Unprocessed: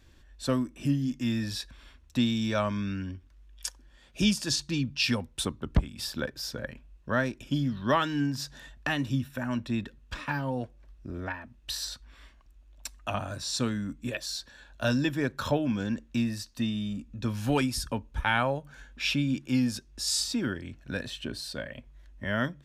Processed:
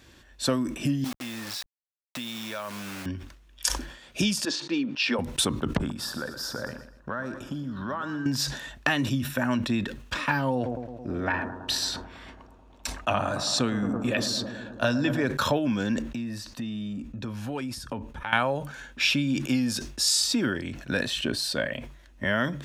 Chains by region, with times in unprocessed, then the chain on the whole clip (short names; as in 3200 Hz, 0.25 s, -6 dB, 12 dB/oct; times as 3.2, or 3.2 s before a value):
1.04–3.06 level-crossing sampler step -36.5 dBFS + low shelf 390 Hz -12 dB + compressor, threshold -40 dBFS
4.45–5.19 HPF 270 Hz 24 dB/oct + tape spacing loss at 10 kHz 24 dB
5.78–8.26 resonant high shelf 1800 Hz -6.5 dB, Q 3 + compressor 12:1, threshold -36 dBFS + feedback echo 0.12 s, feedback 38%, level -12 dB
10.55–15.26 high shelf 6600 Hz -9.5 dB + analogue delay 0.109 s, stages 1024, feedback 81%, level -12 dB + sustainer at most 54 dB/s
16.02–18.33 compressor 5:1, threshold -37 dBFS + high shelf 2500 Hz -8.5 dB
whole clip: compressor, threshold -29 dBFS; HPF 180 Hz 6 dB/oct; sustainer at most 82 dB/s; gain +9 dB